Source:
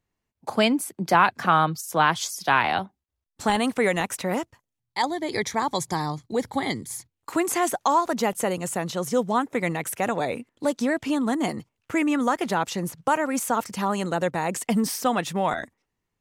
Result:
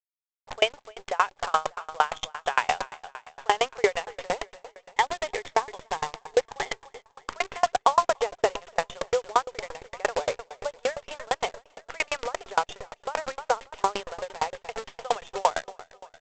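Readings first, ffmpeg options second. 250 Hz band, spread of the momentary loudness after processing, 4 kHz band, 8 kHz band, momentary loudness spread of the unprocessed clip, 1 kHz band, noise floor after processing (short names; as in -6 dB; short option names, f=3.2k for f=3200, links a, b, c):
-21.0 dB, 13 LU, -1.5 dB, -7.5 dB, 8 LU, -2.5 dB, -69 dBFS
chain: -af "afftfilt=real='re*between(b*sr/4096,380,3700)':imag='im*between(b*sr/4096,380,3700)':win_size=4096:overlap=0.75,adynamicequalizer=threshold=0.0112:dfrequency=1900:dqfactor=1.2:tfrequency=1900:tqfactor=1.2:attack=5:release=100:ratio=0.375:range=3.5:mode=cutabove:tftype=bell,aresample=16000,acrusher=bits=6:dc=4:mix=0:aa=0.000001,aresample=44100,aecho=1:1:295|590|885|1180|1475:0.119|0.0689|0.04|0.0232|0.0134,alimiter=level_in=12dB:limit=-1dB:release=50:level=0:latency=1,aeval=exprs='val(0)*pow(10,-34*if(lt(mod(8.7*n/s,1),2*abs(8.7)/1000),1-mod(8.7*n/s,1)/(2*abs(8.7)/1000),(mod(8.7*n/s,1)-2*abs(8.7)/1000)/(1-2*abs(8.7)/1000))/20)':c=same,volume=-3.5dB"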